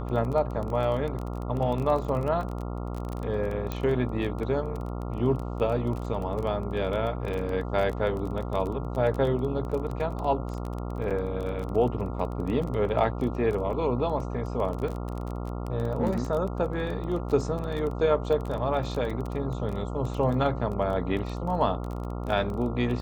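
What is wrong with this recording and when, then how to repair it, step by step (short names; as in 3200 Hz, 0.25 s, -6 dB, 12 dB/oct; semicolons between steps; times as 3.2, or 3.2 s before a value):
buzz 60 Hz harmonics 23 -33 dBFS
crackle 20/s -31 dBFS
3.72 pop -17 dBFS
11.1–11.11 gap 6.9 ms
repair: de-click; de-hum 60 Hz, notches 23; interpolate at 11.1, 6.9 ms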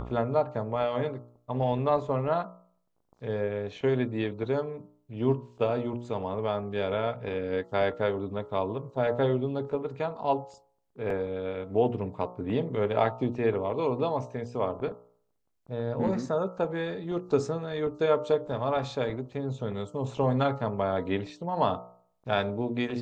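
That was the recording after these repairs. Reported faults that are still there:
3.72 pop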